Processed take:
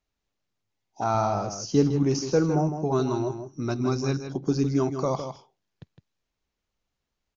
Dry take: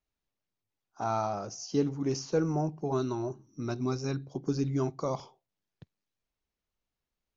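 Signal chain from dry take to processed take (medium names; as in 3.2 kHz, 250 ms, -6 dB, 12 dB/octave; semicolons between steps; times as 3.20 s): 0.78–0.99 s: spectral replace 960–2500 Hz before; 1.14–2.05 s: bass shelf 110 Hz +10 dB; on a send: delay 159 ms -8.5 dB; on the sum: resampled via 16 kHz; trim +5.5 dB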